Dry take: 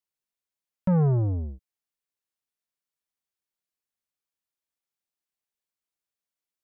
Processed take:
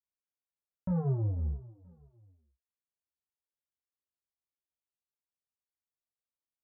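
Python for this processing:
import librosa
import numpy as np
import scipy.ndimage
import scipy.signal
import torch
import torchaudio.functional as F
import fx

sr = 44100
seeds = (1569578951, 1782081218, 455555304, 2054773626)

p1 = scipy.signal.sosfilt(scipy.signal.butter(2, 1300.0, 'lowpass', fs=sr, output='sos'), x)
p2 = fx.peak_eq(p1, sr, hz=65.0, db=12.0, octaves=0.68)
p3 = p2 + fx.echo_feedback(p2, sr, ms=486, feedback_pct=26, wet_db=-21.5, dry=0)
p4 = fx.detune_double(p3, sr, cents=16)
y = p4 * librosa.db_to_amplitude(-5.0)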